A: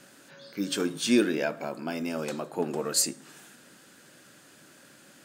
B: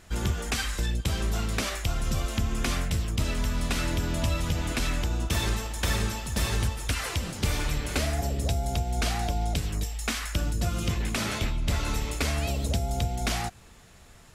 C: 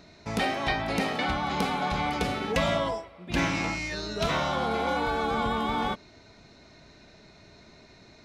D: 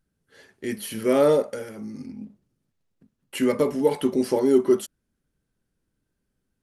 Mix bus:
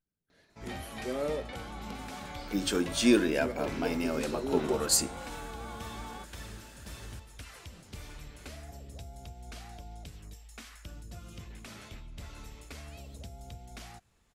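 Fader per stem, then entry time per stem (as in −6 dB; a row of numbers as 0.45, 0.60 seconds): −0.5, −18.0, −16.0, −15.0 decibels; 1.95, 0.50, 0.30, 0.00 seconds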